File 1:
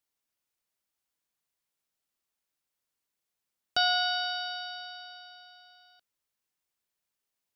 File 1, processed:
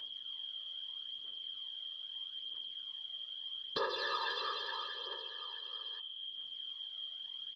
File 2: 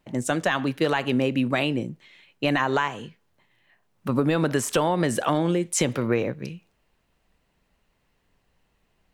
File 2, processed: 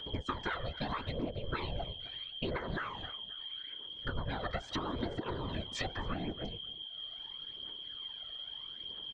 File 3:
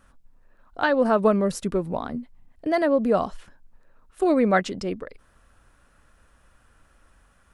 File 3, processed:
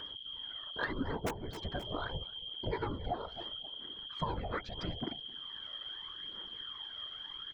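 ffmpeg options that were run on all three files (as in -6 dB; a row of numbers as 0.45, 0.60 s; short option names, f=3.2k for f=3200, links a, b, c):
-af "highpass=310,equalizer=f=360:t=q:w=4:g=-10,equalizer=f=610:t=q:w=4:g=4,equalizer=f=990:t=q:w=4:g=-6,equalizer=f=1.5k:t=q:w=4:g=3,equalizer=f=2.6k:t=q:w=4:g=-8,equalizer=f=3.9k:t=q:w=4:g=6,lowpass=f=4.9k:w=0.5412,lowpass=f=4.9k:w=1.3066,aeval=exprs='val(0)*sin(2*PI*250*n/s)':c=same,aphaser=in_gain=1:out_gain=1:delay=1.7:decay=0.66:speed=0.78:type=triangular,asuperstop=centerf=800:order=20:qfactor=5.8,acompressor=mode=upward:threshold=-44dB:ratio=2.5,highshelf=f=2.8k:g=-10,aeval=exprs='val(0)+0.00794*sin(2*PI*3200*n/s)':c=same,aeval=exprs='(mod(1.78*val(0)+1,2)-1)/1.78':c=same,aecho=1:1:264|528:0.0668|0.0207,acompressor=threshold=-32dB:ratio=20,afftfilt=real='hypot(re,im)*cos(2*PI*random(0))':imag='hypot(re,im)*sin(2*PI*random(1))':win_size=512:overlap=0.75,volume=6dB"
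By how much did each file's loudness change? -11.5, -15.0, -16.5 LU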